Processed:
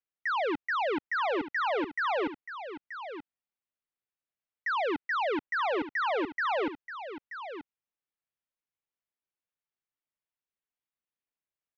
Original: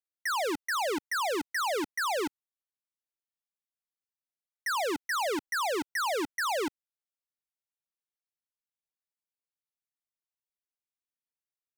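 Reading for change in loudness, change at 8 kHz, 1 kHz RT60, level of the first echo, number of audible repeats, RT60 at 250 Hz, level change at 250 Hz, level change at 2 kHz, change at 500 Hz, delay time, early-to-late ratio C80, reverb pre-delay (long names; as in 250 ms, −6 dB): −0.5 dB, below −25 dB, no reverb audible, −11.0 dB, 1, no reverb audible, +1.5 dB, +1.0 dB, +1.5 dB, 930 ms, no reverb audible, no reverb audible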